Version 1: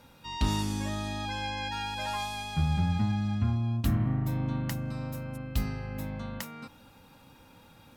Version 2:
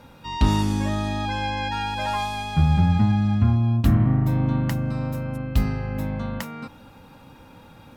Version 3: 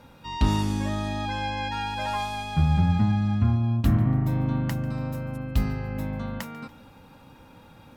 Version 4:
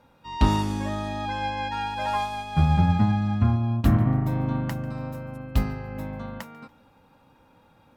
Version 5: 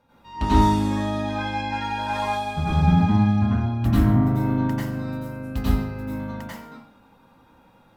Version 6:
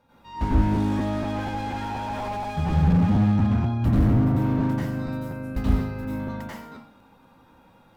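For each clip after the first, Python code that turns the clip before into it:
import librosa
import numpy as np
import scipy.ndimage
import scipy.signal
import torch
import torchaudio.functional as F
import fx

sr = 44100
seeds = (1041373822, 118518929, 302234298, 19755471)

y1 = fx.high_shelf(x, sr, hz=2800.0, db=-8.5)
y1 = y1 * 10.0 ** (9.0 / 20.0)
y2 = fx.echo_feedback(y1, sr, ms=143, feedback_pct=45, wet_db=-20.5)
y2 = y2 * 10.0 ** (-3.0 / 20.0)
y3 = fx.peak_eq(y2, sr, hz=780.0, db=5.0, octaves=2.6)
y3 = fx.upward_expand(y3, sr, threshold_db=-40.0, expansion=1.5)
y3 = y3 * 10.0 ** (2.0 / 20.0)
y4 = fx.rev_plate(y3, sr, seeds[0], rt60_s=0.55, hf_ratio=0.85, predelay_ms=80, drr_db=-9.0)
y4 = y4 * 10.0 ** (-6.5 / 20.0)
y5 = fx.buffer_crackle(y4, sr, first_s=0.5, period_s=0.24, block=512, kind='repeat')
y5 = fx.slew_limit(y5, sr, full_power_hz=31.0)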